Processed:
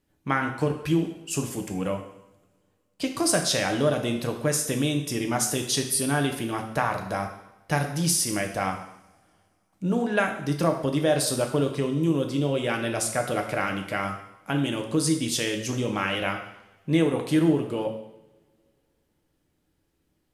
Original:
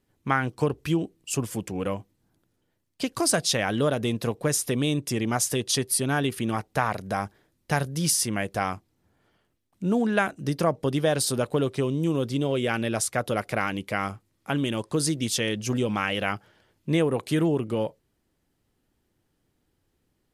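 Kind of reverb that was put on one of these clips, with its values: two-slope reverb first 0.76 s, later 2.8 s, from -27 dB, DRR 3 dB; gain -1.5 dB

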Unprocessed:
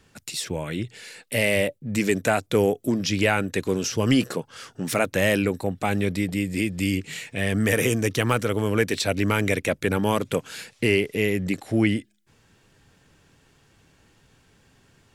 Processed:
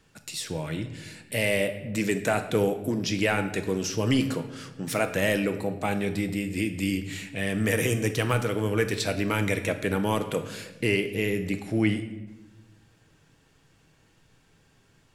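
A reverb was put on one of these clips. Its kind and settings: shoebox room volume 510 m³, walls mixed, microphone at 0.59 m; gain -4 dB

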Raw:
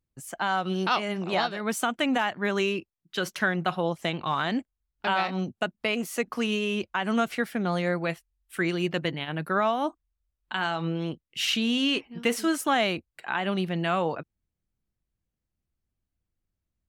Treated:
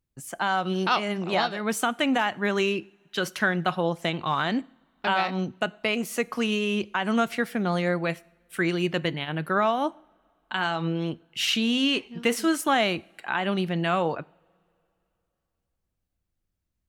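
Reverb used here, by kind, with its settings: two-slope reverb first 0.55 s, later 3 s, from -22 dB, DRR 19.5 dB; gain +1.5 dB

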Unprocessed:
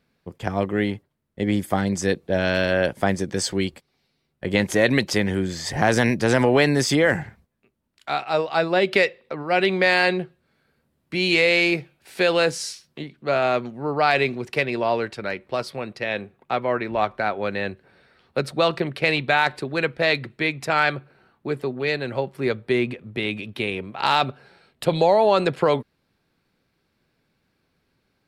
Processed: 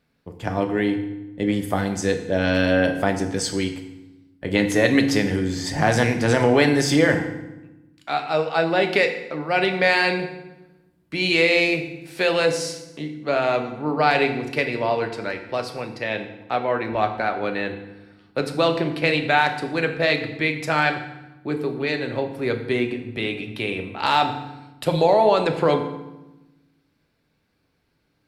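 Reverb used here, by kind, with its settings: FDN reverb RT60 0.99 s, low-frequency decay 1.55×, high-frequency decay 0.8×, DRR 5 dB; gain -1 dB

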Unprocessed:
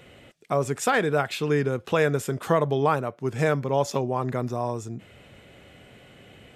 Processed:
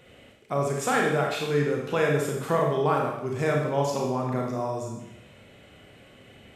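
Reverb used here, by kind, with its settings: Schroeder reverb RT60 0.83 s, combs from 28 ms, DRR -1 dB; gain -4.5 dB

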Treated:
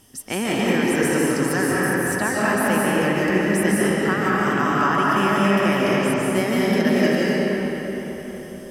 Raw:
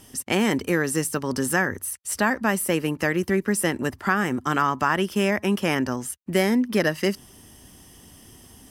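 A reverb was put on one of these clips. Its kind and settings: digital reverb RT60 4.5 s, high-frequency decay 0.6×, pre-delay 0.11 s, DRR -7.5 dB; gain -4 dB

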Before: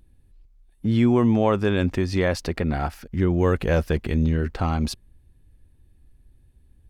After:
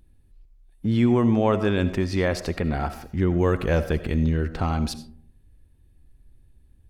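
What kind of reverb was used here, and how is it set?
digital reverb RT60 0.59 s, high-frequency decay 0.35×, pre-delay 40 ms, DRR 12 dB; gain -1 dB

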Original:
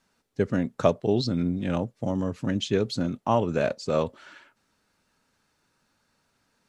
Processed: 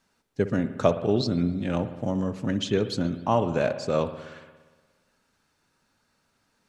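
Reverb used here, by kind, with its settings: spring tank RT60 1.4 s, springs 58 ms, chirp 80 ms, DRR 10.5 dB

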